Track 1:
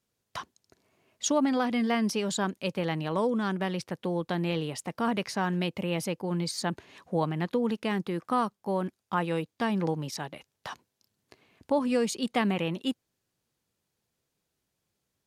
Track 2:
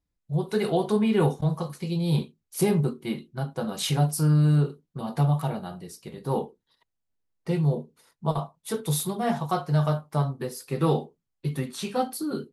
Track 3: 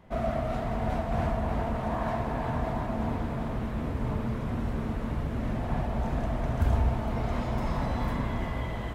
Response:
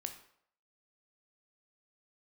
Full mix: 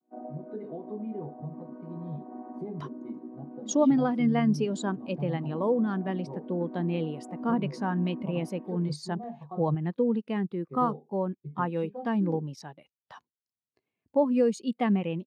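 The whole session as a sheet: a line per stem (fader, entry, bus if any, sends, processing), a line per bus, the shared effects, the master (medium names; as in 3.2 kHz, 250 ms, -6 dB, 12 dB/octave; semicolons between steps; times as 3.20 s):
0.0 dB, 2.45 s, no bus, no send, none
-6.0 dB, 0.00 s, muted 9.75–10.69 s, bus A, no send, comb of notches 1.4 kHz
-3.0 dB, 0.00 s, bus A, no send, vocoder on a held chord major triad, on B3
bus A: 0.0 dB, tape spacing loss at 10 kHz 24 dB; compression 3:1, threshold -32 dBFS, peak gain reduction 7 dB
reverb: none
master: spectral contrast expander 1.5:1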